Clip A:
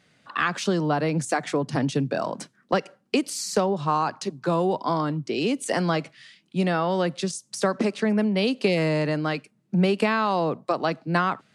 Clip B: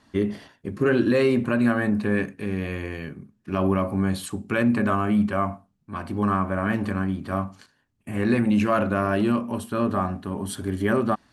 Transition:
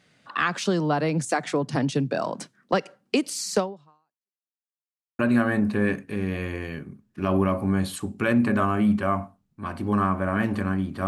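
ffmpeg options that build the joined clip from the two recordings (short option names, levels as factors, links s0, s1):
-filter_complex "[0:a]apad=whole_dur=11.07,atrim=end=11.07,asplit=2[s0][s1];[s0]atrim=end=4.5,asetpts=PTS-STARTPTS,afade=t=out:st=3.59:d=0.91:c=exp[s2];[s1]atrim=start=4.5:end=5.19,asetpts=PTS-STARTPTS,volume=0[s3];[1:a]atrim=start=1.49:end=7.37,asetpts=PTS-STARTPTS,afade=t=in:d=0.004:c=hsin[s4];[s2][s3][s4]concat=n=3:v=0:a=1"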